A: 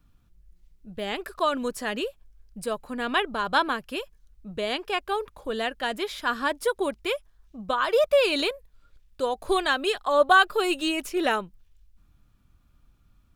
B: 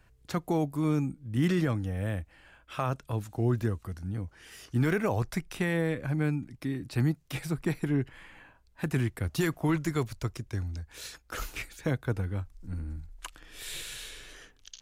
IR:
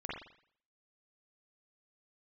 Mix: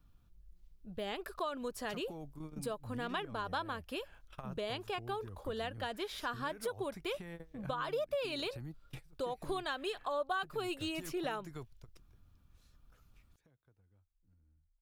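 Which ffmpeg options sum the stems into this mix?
-filter_complex "[0:a]volume=-3.5dB,asplit=2[a][b];[1:a]acompressor=threshold=-37dB:ratio=8,adelay=1600,volume=-3dB[c];[b]apad=whole_len=724112[d];[c][d]sidechaingate=range=-26dB:threshold=-54dB:ratio=16:detection=peak[e];[a][e]amix=inputs=2:normalize=0,equalizer=f=250:t=o:w=1:g=-3,equalizer=f=2k:t=o:w=1:g=-4,equalizer=f=8k:t=o:w=1:g=-4,acompressor=threshold=-37dB:ratio=3"

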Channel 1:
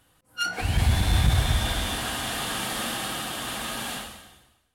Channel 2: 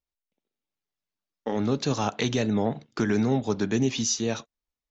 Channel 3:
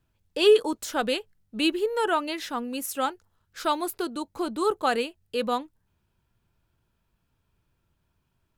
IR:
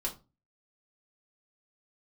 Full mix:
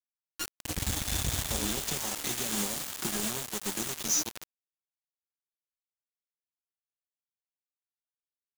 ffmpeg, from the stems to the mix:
-filter_complex "[0:a]highshelf=f=3.8k:g=8.5,volume=-13.5dB[a];[1:a]acompressor=threshold=-34dB:ratio=2.5,aecho=1:1:5.4:0.9,adelay=50,volume=-5dB[b];[2:a]alimiter=limit=-14.5dB:level=0:latency=1:release=291,asplit=3[c][d][e];[c]bandpass=f=300:t=q:w=8,volume=0dB[f];[d]bandpass=f=870:t=q:w=8,volume=-6dB[g];[e]bandpass=f=2.24k:t=q:w=8,volume=-9dB[h];[f][g][h]amix=inputs=3:normalize=0,volume=-11dB,asplit=2[i][j];[j]volume=-10dB[k];[3:a]atrim=start_sample=2205[l];[k][l]afir=irnorm=-1:irlink=0[m];[a][b][i][m]amix=inputs=4:normalize=0,equalizer=f=6.8k:w=2:g=12.5,acrossover=split=260|3000[n][o][p];[o]acompressor=threshold=-36dB:ratio=6[q];[n][q][p]amix=inputs=3:normalize=0,acrusher=bits=4:mix=0:aa=0.000001"

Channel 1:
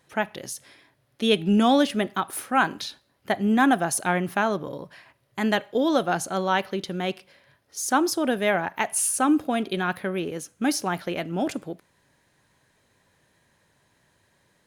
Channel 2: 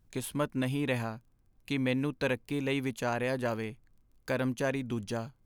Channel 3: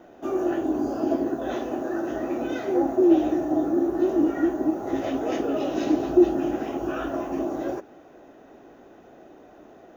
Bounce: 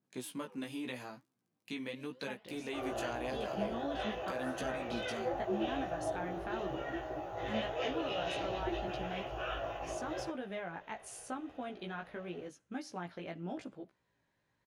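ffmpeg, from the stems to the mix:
-filter_complex "[0:a]highshelf=f=6k:g=-8,alimiter=limit=-14dB:level=0:latency=1:release=135,lowpass=10k,adelay=2100,volume=-10.5dB[a];[1:a]highpass=f=160:w=0.5412,highpass=f=160:w=1.3066,flanger=delay=2.6:depth=9:regen=88:speed=0.79:shape=triangular,adynamicequalizer=threshold=0.00224:dfrequency=2800:dqfactor=0.7:tfrequency=2800:tqfactor=0.7:attack=5:release=100:ratio=0.375:range=3.5:mode=boostabove:tftype=highshelf,volume=1.5dB[b];[2:a]firequalizer=gain_entry='entry(140,0);entry(230,-27);entry(490,-3);entry(1400,-2);entry(2900,8);entry(5600,-6)':delay=0.05:min_phase=1,adelay=2500,volume=-1.5dB[c];[a][b]amix=inputs=2:normalize=0,acompressor=threshold=-34dB:ratio=6,volume=0dB[d];[c][d]amix=inputs=2:normalize=0,highshelf=f=11k:g=-9.5,flanger=delay=15:depth=3.3:speed=0.87"

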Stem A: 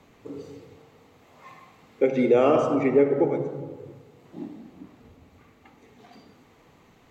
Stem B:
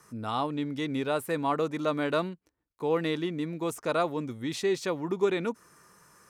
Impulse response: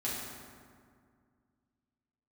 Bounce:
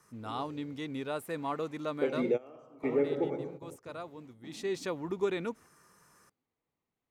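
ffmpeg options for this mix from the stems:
-filter_complex "[0:a]volume=-9.5dB[a];[1:a]volume=3.5dB,afade=t=out:st=1.84:d=0.66:silence=0.375837,afade=t=in:st=4.43:d=0.35:silence=0.298538,asplit=2[b][c];[c]apad=whole_len=313465[d];[a][d]sidechaingate=range=-23dB:threshold=-50dB:ratio=16:detection=peak[e];[e][b]amix=inputs=2:normalize=0"

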